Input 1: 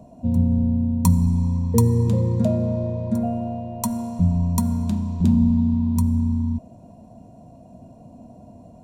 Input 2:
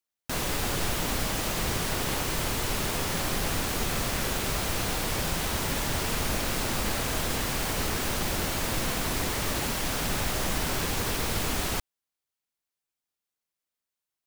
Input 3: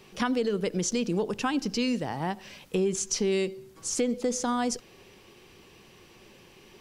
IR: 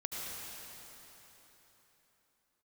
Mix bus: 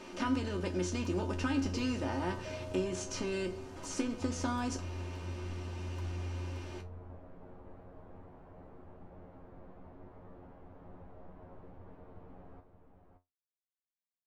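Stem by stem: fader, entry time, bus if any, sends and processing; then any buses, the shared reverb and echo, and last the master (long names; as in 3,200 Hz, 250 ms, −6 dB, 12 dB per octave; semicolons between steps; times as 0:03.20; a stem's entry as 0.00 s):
−15.0 dB, 0.00 s, no send, echo send −7.5 dB, flat-topped bell 1,500 Hz +10.5 dB 3 octaves; brickwall limiter −13.5 dBFS, peak gain reduction 11 dB; phaser with its sweep stopped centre 750 Hz, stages 6
−14.5 dB, 0.80 s, no send, echo send −8.5 dB, Chebyshev low-pass filter 740 Hz
−3.5 dB, 0.00 s, no send, no echo send, compressor on every frequency bin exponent 0.6; comb filter 3.3 ms, depth 76%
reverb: not used
echo: single-tap delay 573 ms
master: high-shelf EQ 5,500 Hz −11.5 dB; tuned comb filter 90 Hz, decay 0.18 s, harmonics all, mix 90%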